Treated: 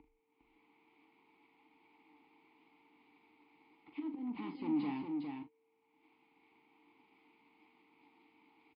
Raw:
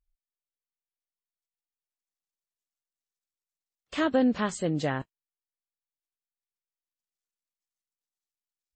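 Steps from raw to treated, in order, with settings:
low-pass that shuts in the quiet parts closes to 2,300 Hz
upward compression, threshold −27 dBFS
volume swells 567 ms
soft clipping −38 dBFS, distortion −3 dB
formant filter u
steady tone 450 Hz −80 dBFS
linear-phase brick-wall low-pass 5,100 Hz
double-tracking delay 41 ms −9 dB
single-tap delay 406 ms −5 dB
multiband upward and downward expander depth 40%
level +8 dB

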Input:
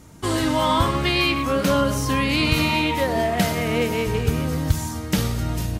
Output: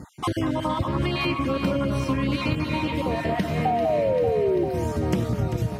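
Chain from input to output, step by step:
time-frequency cells dropped at random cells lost 31%
high-pass filter 110 Hz 12 dB per octave
low-shelf EQ 170 Hz +11 dB
sound drawn into the spectrogram fall, 0:03.65–0:04.65, 340–770 Hz −11 dBFS
high-shelf EQ 3,500 Hz −11 dB
downward compressor 6 to 1, threshold −29 dBFS, peak gain reduction 20 dB
on a send: delay that swaps between a low-pass and a high-pass 196 ms, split 1,600 Hz, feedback 84%, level −8 dB
on the sum: level +6 dB

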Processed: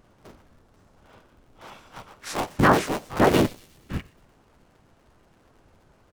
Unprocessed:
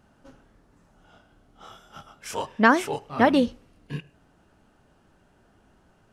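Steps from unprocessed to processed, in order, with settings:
sub-harmonics by changed cycles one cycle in 3, inverted
in parallel at −2 dB: brickwall limiter −13 dBFS, peak gain reduction 8.5 dB
on the sum: delay with a high-pass on its return 120 ms, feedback 54%, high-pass 5,000 Hz, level −15.5 dB
pitch-shifted copies added −7 semitones −2 dB, −4 semitones −2 dB
level −6.5 dB

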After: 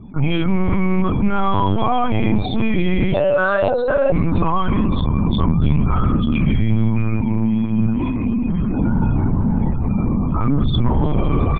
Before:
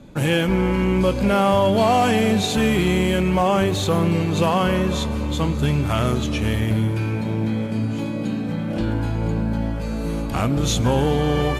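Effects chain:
comb filter 0.9 ms, depth 71%
in parallel at +0.5 dB: brickwall limiter −13.5 dBFS, peak gain reduction 7.5 dB
0:03.14–0:04.12: on the sum: frequency shifter +390 Hz
spectral peaks only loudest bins 32
gain into a clipping stage and back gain 7 dB
high-frequency loss of the air 270 metres
single-tap delay 369 ms −20.5 dB
linear-prediction vocoder at 8 kHz pitch kept
level −2.5 dB

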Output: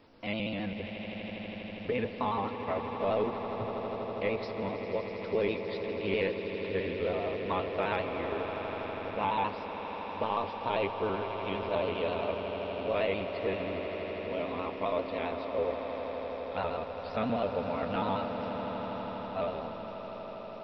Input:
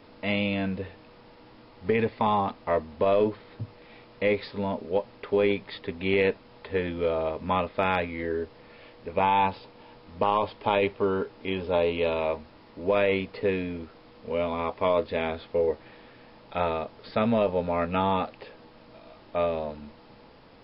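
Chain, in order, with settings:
pitch shifter gated in a rhythm +1.5 semitones, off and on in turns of 66 ms
echo that builds up and dies away 81 ms, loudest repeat 8, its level −13 dB
level −7 dB

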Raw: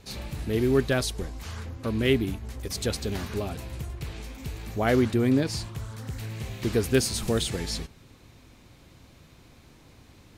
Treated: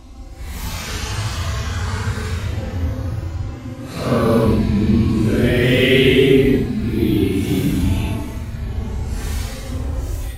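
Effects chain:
extreme stretch with random phases 8×, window 0.05 s, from 0:01.34
automatic gain control gain up to 13.5 dB

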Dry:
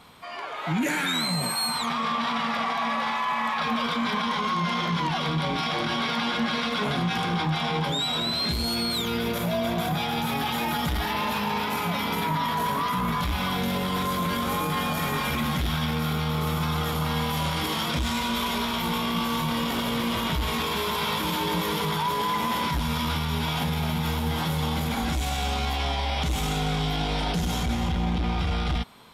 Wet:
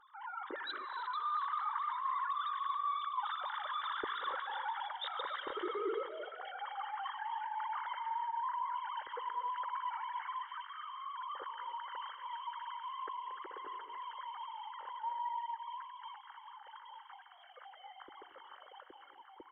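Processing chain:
three sine waves on the formant tracks
source passing by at 0:07.34, 22 m/s, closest 20 metres
reversed playback
downward compressor 8 to 1, threshold −43 dBFS, peak gain reduction 25 dB
reversed playback
phaser with its sweep stopped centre 680 Hz, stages 6
on a send: echo with shifted repeats 343 ms, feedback 48%, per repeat +32 Hz, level −16.5 dB
on the sum: reverb whose tail is shaped and stops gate 480 ms rising, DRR 11.5 dB
time stretch by overlap-add 0.67×, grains 40 ms
level +10.5 dB

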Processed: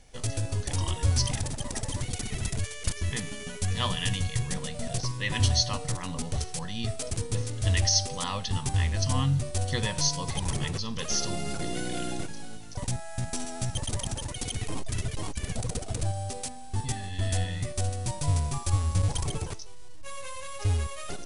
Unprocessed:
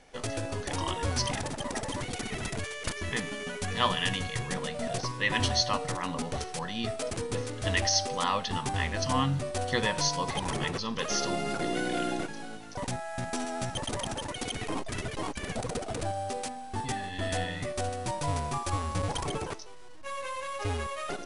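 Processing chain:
drawn EQ curve 100 Hz 0 dB, 270 Hz −12 dB, 1,400 Hz −15 dB, 8,100 Hz −3 dB
level +8.5 dB

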